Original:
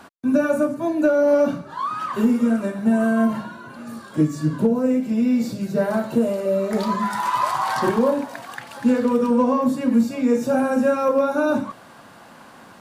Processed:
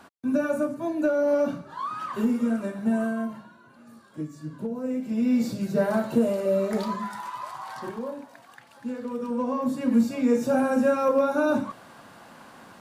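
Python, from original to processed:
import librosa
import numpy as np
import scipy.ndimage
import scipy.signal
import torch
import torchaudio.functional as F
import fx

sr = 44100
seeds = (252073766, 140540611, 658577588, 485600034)

y = fx.gain(x, sr, db=fx.line((2.98, -6.0), (3.39, -15.0), (4.54, -15.0), (5.37, -2.5), (6.64, -2.5), (7.38, -15.0), (8.95, -15.0), (9.98, -3.0)))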